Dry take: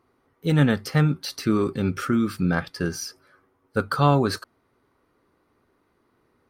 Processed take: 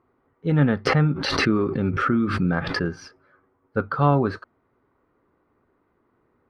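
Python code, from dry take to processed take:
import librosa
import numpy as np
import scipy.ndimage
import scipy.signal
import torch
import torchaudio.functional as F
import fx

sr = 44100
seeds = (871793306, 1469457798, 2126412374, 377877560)

y = scipy.signal.sosfilt(scipy.signal.butter(2, 1900.0, 'lowpass', fs=sr, output='sos'), x)
y = fx.pre_swell(y, sr, db_per_s=33.0, at=(0.85, 3.07), fade=0.02)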